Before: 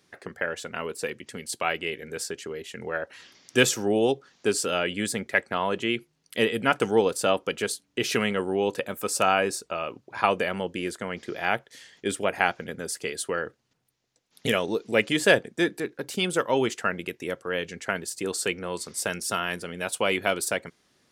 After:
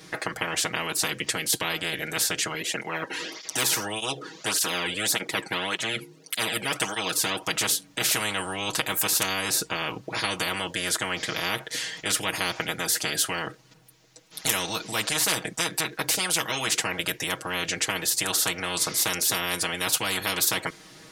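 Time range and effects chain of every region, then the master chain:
2.54–7.42 s: de-esser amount 45% + peaking EQ 390 Hz +10 dB 1.4 oct + cancelling through-zero flanger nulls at 1.7 Hz, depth 1.8 ms
whole clip: comb 6.3 ms, depth 91%; spectrum-flattening compressor 10:1; trim -3.5 dB

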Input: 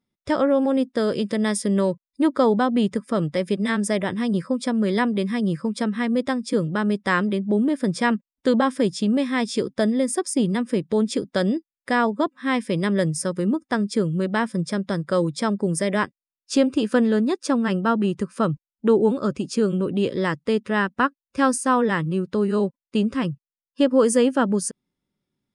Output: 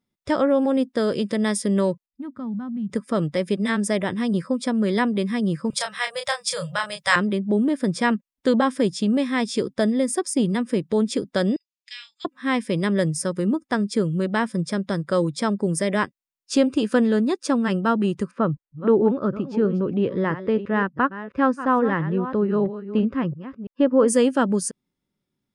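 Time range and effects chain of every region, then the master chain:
2.06–2.90 s: FFT filter 220 Hz 0 dB, 400 Hz -25 dB, 1.3 kHz -15 dB, 5.2 kHz -28 dB + compression 2:1, threshold -29 dBFS
5.70–7.16 s: elliptic band-stop 150–550 Hz, stop band 50 dB + treble shelf 2.3 kHz +11 dB + doubling 29 ms -6 dB
11.56–12.25 s: elliptic band-pass 2.5–7.1 kHz, stop band 70 dB + doubling 42 ms -11 dB
18.31–24.08 s: chunks repeated in reverse 335 ms, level -12 dB + low-pass 1.9 kHz
whole clip: none

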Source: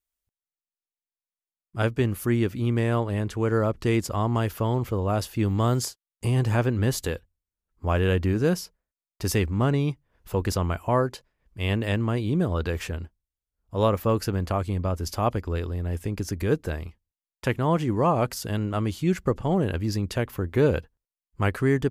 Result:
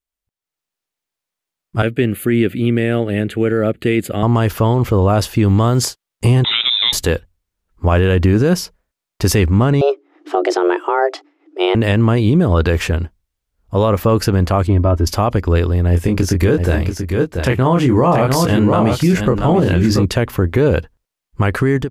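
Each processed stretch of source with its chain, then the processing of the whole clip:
1.82–4.23 s: Bessel high-pass 200 Hz + static phaser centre 2.4 kHz, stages 4
6.44–6.93 s: high-pass 150 Hz 24 dB/octave + frequency inversion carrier 3.8 kHz
9.81–11.75 s: frequency shift +270 Hz + distance through air 93 m
14.67–15.07 s: low-pass 1.3 kHz 6 dB/octave + comb 3.1 ms, depth 59%
15.89–20.05 s: doubling 23 ms -5 dB + delay 684 ms -7.5 dB
whole clip: treble shelf 6.3 kHz -6 dB; peak limiter -19.5 dBFS; level rider gain up to 13.5 dB; trim +1 dB

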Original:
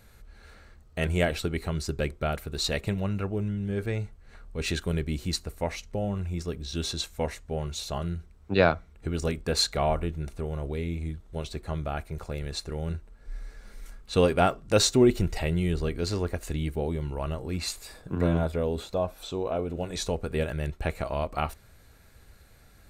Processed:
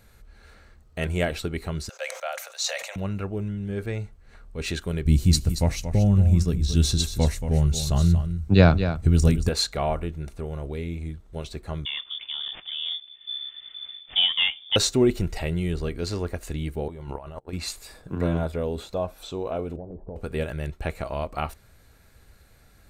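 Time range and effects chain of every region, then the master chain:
1.89–2.96 s: rippled Chebyshev high-pass 520 Hz, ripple 3 dB + peaking EQ 6.3 kHz +13 dB 0.39 oct + decay stretcher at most 70 dB/s
5.05–9.49 s: tone controls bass +15 dB, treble +9 dB + delay 229 ms -10 dB
11.85–14.76 s: CVSD coder 32 kbps + treble shelf 2.4 kHz -7 dB + frequency inversion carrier 3.5 kHz
16.88–17.53 s: gate -33 dBFS, range -39 dB + peaking EQ 840 Hz +8 dB 1.2 oct + compressor with a negative ratio -37 dBFS
19.76–20.16 s: steep low-pass 830 Hz + compression, threshold -33 dBFS
whole clip: none

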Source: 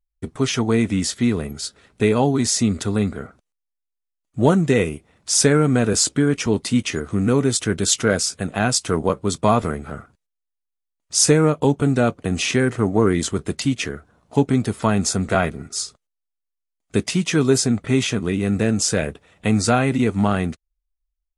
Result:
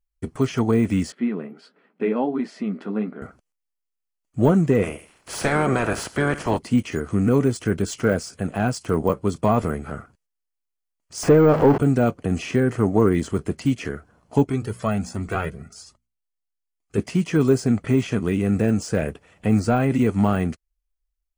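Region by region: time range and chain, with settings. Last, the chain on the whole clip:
1.12–3.22 s: brick-wall FIR high-pass 160 Hz + distance through air 440 m + flange 1.5 Hz, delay 6.5 ms, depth 6.8 ms, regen -40%
4.82–6.57 s: spectral peaks clipped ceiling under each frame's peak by 23 dB + feedback delay 77 ms, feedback 30%, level -18 dB
11.23–11.78 s: jump at every zero crossing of -17 dBFS + overdrive pedal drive 16 dB, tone 1.3 kHz, clips at -1.5 dBFS
14.44–16.98 s: hum notches 60/120/180/240 Hz + Shepard-style flanger rising 1.3 Hz
whole clip: band-stop 3.7 kHz, Q 6.2; de-esser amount 100%

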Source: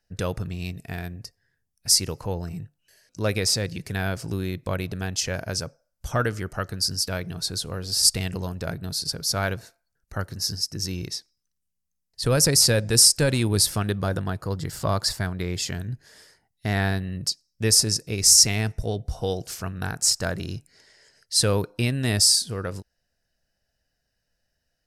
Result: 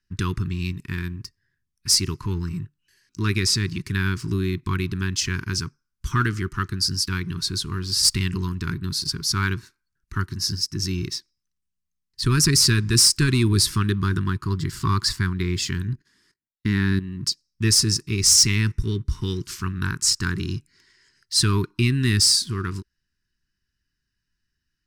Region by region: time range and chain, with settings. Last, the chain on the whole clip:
15.93–17.23 s: gate -55 dBFS, range -23 dB + peaking EQ 250 Hz +8 dB 1.2 oct + level held to a coarse grid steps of 12 dB
whole clip: treble shelf 8.1 kHz -11.5 dB; waveshaping leveller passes 1; elliptic band-stop 380–1000 Hz, stop band 40 dB; trim +1.5 dB

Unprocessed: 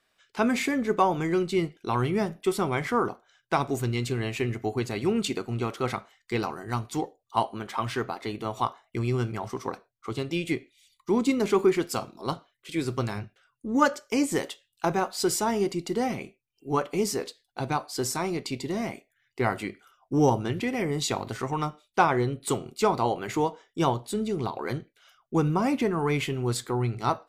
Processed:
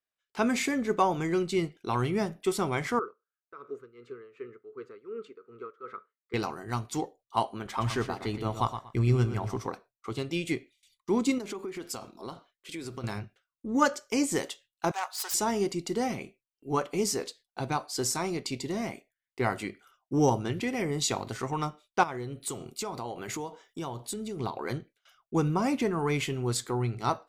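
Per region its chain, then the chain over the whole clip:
2.99–6.34 s: two resonant band-passes 760 Hz, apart 1.5 oct + tremolo 2.7 Hz, depth 75%
7.65–9.67 s: bass shelf 140 Hz +11.5 dB + feedback delay 118 ms, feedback 24%, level -10 dB
11.38–13.04 s: peaking EQ 140 Hz -6.5 dB 0.44 oct + compression, threshold -32 dBFS
14.91–15.34 s: self-modulated delay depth 0.11 ms + Chebyshev high-pass 820 Hz, order 3
22.03–24.40 s: treble shelf 7.9 kHz +6.5 dB + compression 4:1, threshold -31 dBFS + tape noise reduction on one side only encoder only
whole clip: gate with hold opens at -49 dBFS; dynamic bell 6.6 kHz, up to +5 dB, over -48 dBFS, Q 1.1; trim -2.5 dB

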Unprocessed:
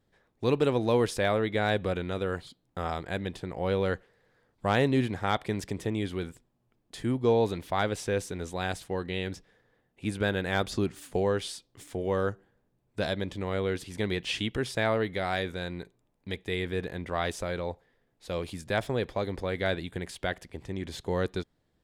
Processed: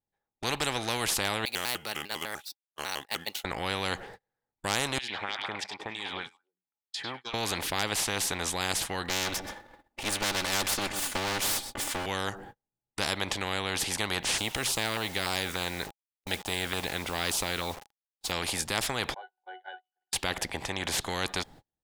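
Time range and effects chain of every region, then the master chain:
1.45–3.45 s: median filter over 5 samples + differentiator + vibrato with a chosen wave square 5 Hz, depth 250 cents
4.98–7.34 s: LFO band-pass sine 3.2 Hz 910–5100 Hz + compression 1.5:1, threshold -54 dBFS + repeats whose band climbs or falls 101 ms, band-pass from 2.9 kHz, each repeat -1.4 oct, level -2 dB
9.09–12.06 s: comb filter that takes the minimum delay 3.4 ms + delay 126 ms -22.5 dB + upward compressor, threshold -44 dBFS
14.38–18.32 s: LFO notch saw down 3.4 Hz 700–2200 Hz + word length cut 10-bit, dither none
19.14–20.13 s: elliptic high-pass 640 Hz, stop band 80 dB + distance through air 130 m + pitch-class resonator F#, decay 0.32 s
whole clip: gate -54 dBFS, range -40 dB; peaking EQ 820 Hz +14 dB 0.21 oct; spectrum-flattening compressor 4:1

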